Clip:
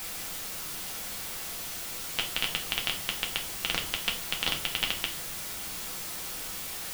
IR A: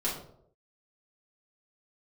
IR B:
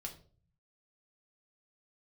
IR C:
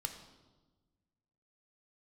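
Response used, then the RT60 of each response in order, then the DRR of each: B; 0.70, 0.45, 1.3 s; -7.5, 1.0, 4.5 dB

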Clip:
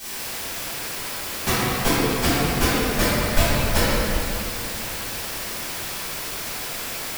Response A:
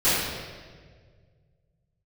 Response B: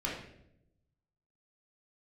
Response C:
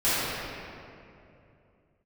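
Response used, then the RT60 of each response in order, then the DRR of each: C; 1.7, 0.80, 2.7 s; -17.0, -5.5, -16.0 dB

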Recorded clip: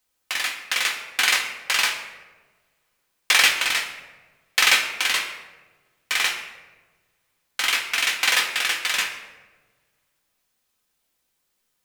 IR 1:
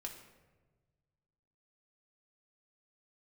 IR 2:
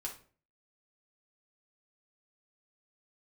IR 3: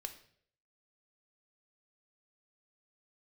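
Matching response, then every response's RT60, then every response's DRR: 1; 1.3, 0.45, 0.60 s; 0.5, -2.5, 6.5 dB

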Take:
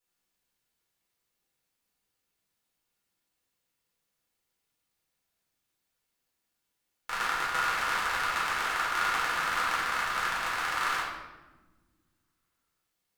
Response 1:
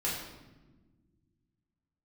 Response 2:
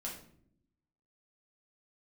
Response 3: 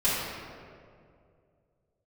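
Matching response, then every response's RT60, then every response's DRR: 1; not exponential, not exponential, 2.3 s; -7.0, -3.5, -12.0 dB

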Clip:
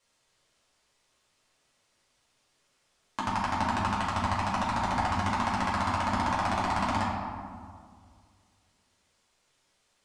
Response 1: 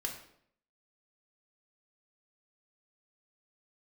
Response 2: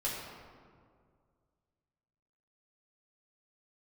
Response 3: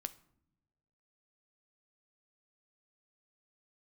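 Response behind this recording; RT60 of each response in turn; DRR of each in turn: 2; 0.65 s, 2.0 s, not exponential; 0.5, -7.0, 11.5 dB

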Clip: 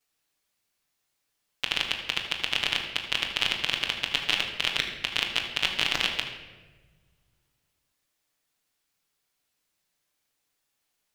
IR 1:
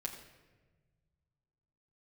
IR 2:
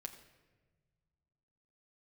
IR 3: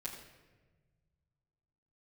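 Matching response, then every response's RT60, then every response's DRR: 3; 1.3 s, not exponential, 1.3 s; -2.0, 3.0, -9.0 dB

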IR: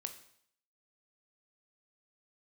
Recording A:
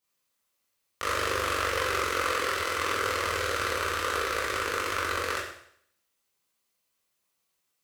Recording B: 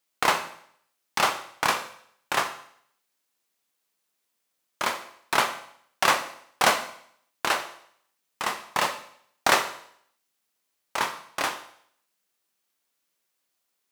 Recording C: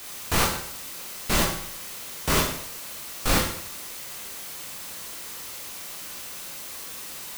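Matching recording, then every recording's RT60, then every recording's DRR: B; 0.65, 0.65, 0.65 s; -8.0, 7.0, -2.5 dB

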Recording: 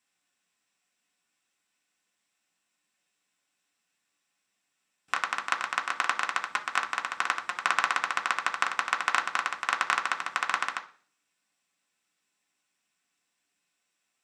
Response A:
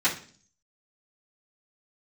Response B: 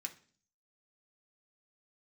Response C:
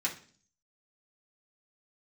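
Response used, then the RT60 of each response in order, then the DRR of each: B; 0.45, 0.45, 0.45 s; -13.0, 2.5, -5.0 dB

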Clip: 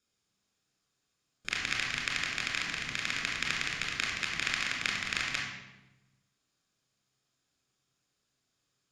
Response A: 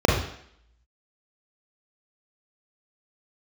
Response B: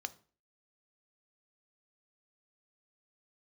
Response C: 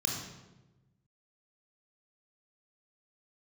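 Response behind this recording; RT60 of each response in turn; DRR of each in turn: C; 0.65, 0.40, 1.1 s; -1.0, 11.5, -1.5 dB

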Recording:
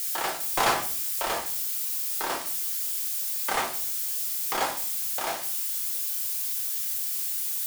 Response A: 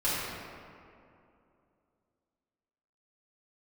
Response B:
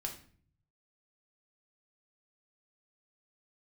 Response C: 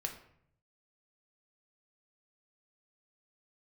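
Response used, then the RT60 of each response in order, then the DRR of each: B; 2.6, 0.50, 0.65 s; -10.5, 1.0, 3.0 dB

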